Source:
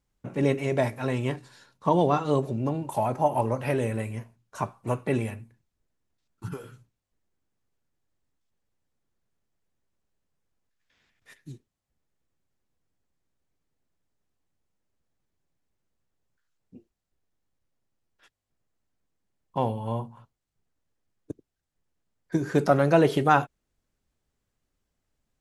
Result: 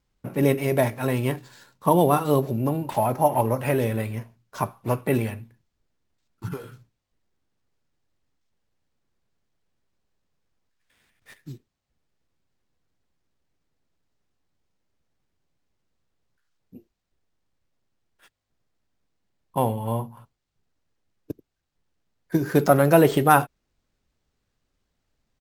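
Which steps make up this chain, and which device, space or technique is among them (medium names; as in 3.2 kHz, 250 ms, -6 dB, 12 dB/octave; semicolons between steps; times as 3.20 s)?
crushed at another speed (playback speed 1.25×; sample-and-hold 3×; playback speed 0.8×); trim +3.5 dB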